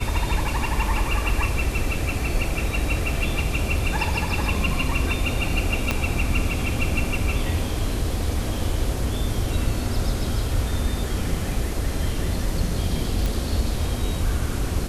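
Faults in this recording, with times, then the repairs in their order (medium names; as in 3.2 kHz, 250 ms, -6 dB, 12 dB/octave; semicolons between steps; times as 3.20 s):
5.91 s: pop -7 dBFS
13.26 s: pop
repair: de-click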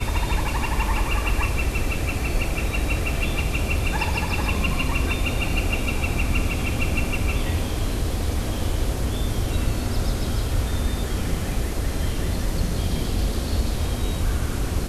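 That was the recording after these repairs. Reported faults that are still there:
5.91 s: pop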